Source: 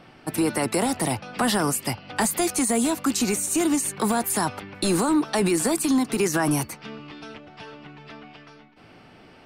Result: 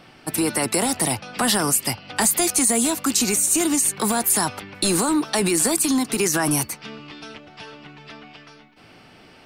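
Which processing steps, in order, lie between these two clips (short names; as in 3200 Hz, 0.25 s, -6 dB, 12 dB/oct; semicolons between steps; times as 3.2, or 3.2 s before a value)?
high shelf 2700 Hz +8 dB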